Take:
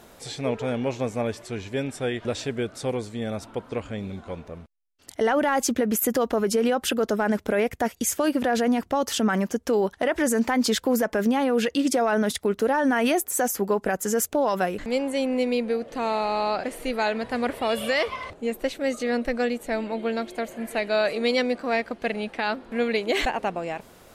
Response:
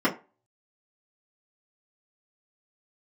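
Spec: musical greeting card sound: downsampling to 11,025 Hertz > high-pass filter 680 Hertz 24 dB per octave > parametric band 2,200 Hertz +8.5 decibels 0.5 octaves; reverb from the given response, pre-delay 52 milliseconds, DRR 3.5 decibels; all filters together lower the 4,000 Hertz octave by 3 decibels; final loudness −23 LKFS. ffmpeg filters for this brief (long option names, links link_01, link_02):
-filter_complex "[0:a]equalizer=frequency=4000:width_type=o:gain=-6,asplit=2[link_01][link_02];[1:a]atrim=start_sample=2205,adelay=52[link_03];[link_02][link_03]afir=irnorm=-1:irlink=0,volume=-18dB[link_04];[link_01][link_04]amix=inputs=2:normalize=0,aresample=11025,aresample=44100,highpass=frequency=680:width=0.5412,highpass=frequency=680:width=1.3066,equalizer=frequency=2200:width_type=o:width=0.5:gain=8.5,volume=5dB"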